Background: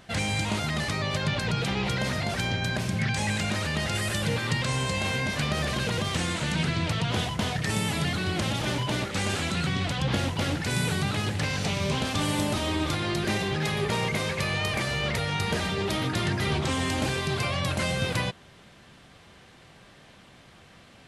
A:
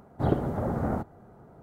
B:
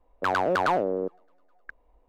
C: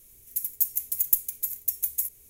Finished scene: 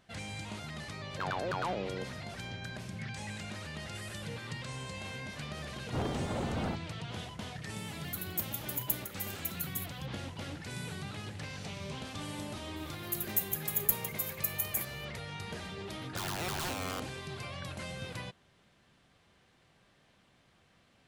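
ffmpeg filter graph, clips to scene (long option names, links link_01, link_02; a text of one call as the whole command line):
ffmpeg -i bed.wav -i cue0.wav -i cue1.wav -i cue2.wav -filter_complex "[2:a]asplit=2[link_01][link_02];[3:a]asplit=2[link_03][link_04];[0:a]volume=-14dB[link_05];[1:a]asoftclip=type=hard:threshold=-27dB[link_06];[link_02]aeval=exprs='(mod(12.6*val(0)+1,2)-1)/12.6':channel_layout=same[link_07];[link_01]atrim=end=2.08,asetpts=PTS-STARTPTS,volume=-11.5dB,afade=type=in:duration=0.004:curve=hsin,afade=type=out:start_time=2.076:duration=0.004:curve=hsin,adelay=960[link_08];[link_06]atrim=end=1.62,asetpts=PTS-STARTPTS,volume=-4dB,afade=type=in:duration=0.004:curve=hsin,afade=type=out:start_time=1.616:duration=0.004:curve=hsin,adelay=252693S[link_09];[link_03]atrim=end=2.29,asetpts=PTS-STARTPTS,volume=-11dB,afade=type=in:duration=0.004:curve=hsin,afade=type=out:start_time=2.286:duration=0.004:curve=hsin,adelay=7770[link_10];[link_04]atrim=end=2.29,asetpts=PTS-STARTPTS,volume=-6.5dB,afade=type=in:duration=0.004:curve=hsin,afade=type=out:start_time=2.286:duration=0.004:curve=hsin,adelay=12760[link_11];[link_07]atrim=end=2.08,asetpts=PTS-STARTPTS,volume=-9.5dB,afade=type=in:duration=0.004:curve=hsin,afade=type=out:start_time=2.076:duration=0.004:curve=hsin,adelay=15930[link_12];[link_05][link_08][link_09][link_10][link_11][link_12]amix=inputs=6:normalize=0" out.wav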